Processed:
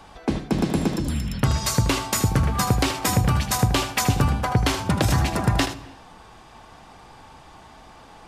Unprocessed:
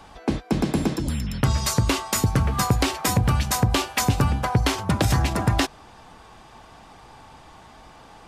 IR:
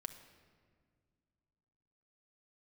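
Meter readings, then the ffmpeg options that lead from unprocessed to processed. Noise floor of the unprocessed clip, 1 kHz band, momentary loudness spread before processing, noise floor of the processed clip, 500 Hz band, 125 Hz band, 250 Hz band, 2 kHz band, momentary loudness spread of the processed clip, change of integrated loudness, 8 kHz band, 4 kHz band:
−48 dBFS, +0.5 dB, 4 LU, −47 dBFS, +0.5 dB, +0.5 dB, +0.5 dB, +0.5 dB, 5 LU, +0.5 dB, +0.5 dB, +0.5 dB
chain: -filter_complex "[0:a]asplit=2[link_01][link_02];[1:a]atrim=start_sample=2205,afade=type=out:start_time=0.34:duration=0.01,atrim=end_sample=15435,adelay=78[link_03];[link_02][link_03]afir=irnorm=-1:irlink=0,volume=-6dB[link_04];[link_01][link_04]amix=inputs=2:normalize=0"

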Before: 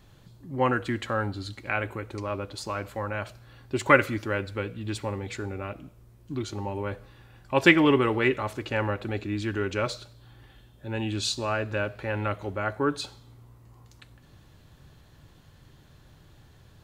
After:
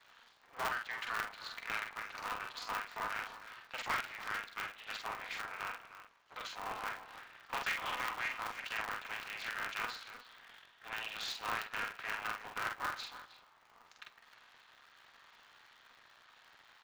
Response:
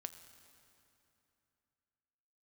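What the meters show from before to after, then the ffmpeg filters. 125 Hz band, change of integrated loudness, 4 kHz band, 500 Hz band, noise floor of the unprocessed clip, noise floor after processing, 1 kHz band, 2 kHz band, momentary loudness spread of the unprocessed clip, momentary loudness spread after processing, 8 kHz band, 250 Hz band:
−29.5 dB, −12.0 dB, −7.5 dB, −23.0 dB, −55 dBFS, −65 dBFS, −8.5 dB, −9.0 dB, 15 LU, 16 LU, −9.5 dB, −29.5 dB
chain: -filter_complex "[0:a]aeval=exprs='if(lt(val(0),0),0.251*val(0),val(0))':channel_layout=same,highpass=frequency=1000:width=0.5412,highpass=frequency=1000:width=1.3066,acompressor=threshold=-45dB:ratio=2.5,aresample=16000,asoftclip=type=tanh:threshold=-33.5dB,aresample=44100,adynamicsmooth=sensitivity=3.5:basefreq=3700,asplit=2[link_01][link_02];[link_02]adelay=46,volume=-3.5dB[link_03];[link_01][link_03]amix=inputs=2:normalize=0,asplit=2[link_04][link_05];[link_05]adelay=310,highpass=300,lowpass=3400,asoftclip=type=hard:threshold=-39.5dB,volume=-12dB[link_06];[link_04][link_06]amix=inputs=2:normalize=0,aeval=exprs='val(0)*sgn(sin(2*PI*120*n/s))':channel_layout=same,volume=7dB"

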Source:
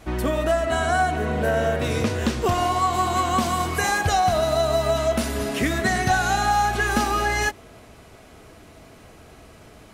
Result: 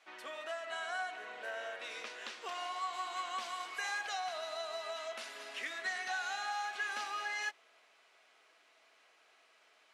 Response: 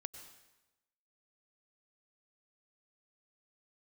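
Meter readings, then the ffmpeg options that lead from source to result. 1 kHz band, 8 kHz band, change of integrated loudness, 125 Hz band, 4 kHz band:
−18.5 dB, −18.0 dB, −17.5 dB, below −40 dB, −12.5 dB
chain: -af "highpass=420,lowpass=2700,aderivative"

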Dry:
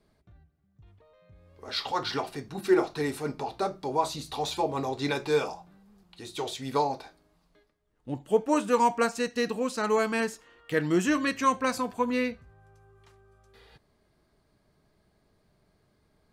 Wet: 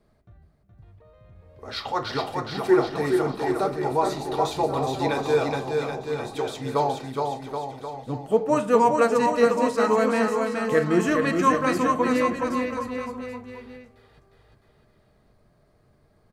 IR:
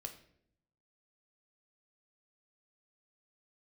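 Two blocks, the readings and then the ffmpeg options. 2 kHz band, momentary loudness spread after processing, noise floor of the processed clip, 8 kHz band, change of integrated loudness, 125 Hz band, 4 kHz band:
+3.5 dB, 13 LU, −62 dBFS, +0.5 dB, +4.5 dB, +6.5 dB, +0.5 dB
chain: -filter_complex "[0:a]aecho=1:1:420|777|1080|1338|1558:0.631|0.398|0.251|0.158|0.1,asplit=2[link_01][link_02];[1:a]atrim=start_sample=2205,lowpass=2300[link_03];[link_02][link_03]afir=irnorm=-1:irlink=0,volume=2.5dB[link_04];[link_01][link_04]amix=inputs=2:normalize=0,volume=-1dB"

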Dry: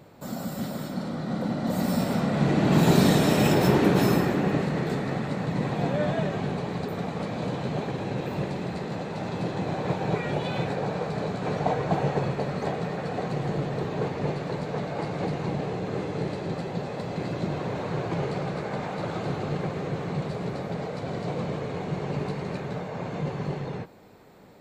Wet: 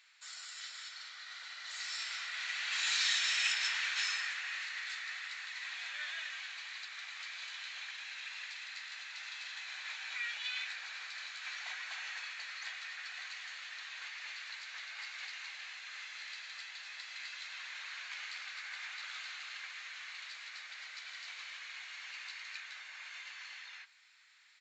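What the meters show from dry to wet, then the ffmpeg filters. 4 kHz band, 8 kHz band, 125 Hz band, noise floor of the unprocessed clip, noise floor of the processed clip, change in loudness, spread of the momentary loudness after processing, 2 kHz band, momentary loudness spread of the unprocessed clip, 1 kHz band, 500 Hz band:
+1.0 dB, −1.5 dB, below −40 dB, −36 dBFS, −50 dBFS, −11.5 dB, 13 LU, −1.0 dB, 12 LU, −20.0 dB, below −40 dB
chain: -af "asuperpass=centerf=4700:order=8:qfactor=0.51,aresample=16000,aresample=44100,volume=1dB"

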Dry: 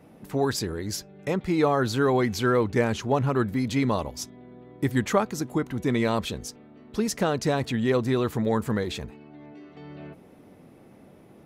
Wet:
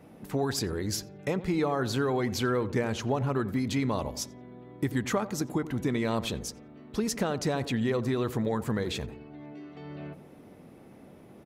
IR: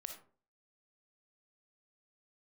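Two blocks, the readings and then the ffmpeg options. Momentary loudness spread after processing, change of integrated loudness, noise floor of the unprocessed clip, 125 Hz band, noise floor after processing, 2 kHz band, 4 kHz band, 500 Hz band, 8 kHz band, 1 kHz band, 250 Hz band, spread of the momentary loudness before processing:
15 LU, −4.5 dB, −52 dBFS, −3.5 dB, −52 dBFS, −4.5 dB, −2.0 dB, −5.0 dB, −1.0 dB, −5.5 dB, −3.5 dB, 14 LU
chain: -filter_complex "[0:a]acompressor=threshold=-25dB:ratio=4,asplit=2[link_01][link_02];[link_02]adelay=88,lowpass=frequency=1000:poles=1,volume=-13dB,asplit=2[link_03][link_04];[link_04]adelay=88,lowpass=frequency=1000:poles=1,volume=0.51,asplit=2[link_05][link_06];[link_06]adelay=88,lowpass=frequency=1000:poles=1,volume=0.51,asplit=2[link_07][link_08];[link_08]adelay=88,lowpass=frequency=1000:poles=1,volume=0.51,asplit=2[link_09][link_10];[link_10]adelay=88,lowpass=frequency=1000:poles=1,volume=0.51[link_11];[link_03][link_05][link_07][link_09][link_11]amix=inputs=5:normalize=0[link_12];[link_01][link_12]amix=inputs=2:normalize=0"

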